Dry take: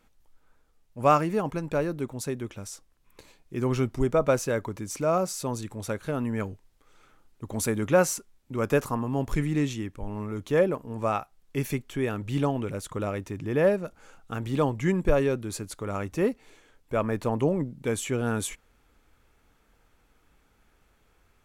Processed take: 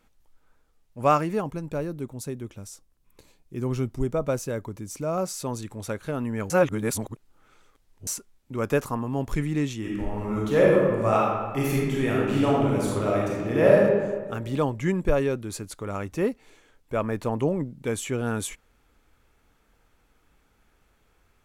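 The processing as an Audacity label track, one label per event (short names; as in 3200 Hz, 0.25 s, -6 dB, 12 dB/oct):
1.440000	5.180000	EQ curve 150 Hz 0 dB, 1800 Hz -7 dB, 15000 Hz 0 dB
6.500000	8.070000	reverse
9.790000	13.790000	reverb throw, RT60 1.5 s, DRR -5 dB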